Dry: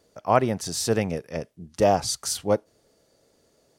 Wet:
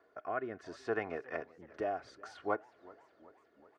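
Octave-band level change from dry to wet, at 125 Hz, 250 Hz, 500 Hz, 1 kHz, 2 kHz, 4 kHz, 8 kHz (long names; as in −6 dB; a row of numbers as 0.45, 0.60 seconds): −24.5 dB, −16.5 dB, −14.0 dB, −14.0 dB, −6.5 dB, −26.5 dB, below −35 dB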